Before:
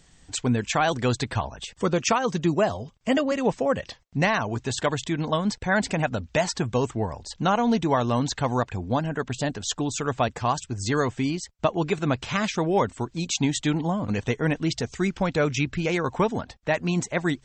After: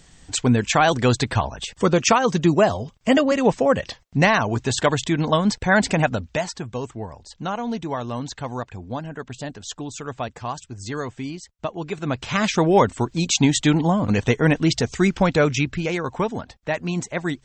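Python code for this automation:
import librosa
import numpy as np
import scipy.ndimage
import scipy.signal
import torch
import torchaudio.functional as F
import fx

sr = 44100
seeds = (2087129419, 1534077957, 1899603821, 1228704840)

y = fx.gain(x, sr, db=fx.line((6.05, 5.5), (6.58, -5.0), (11.84, -5.0), (12.54, 6.5), (15.26, 6.5), (16.02, -0.5)))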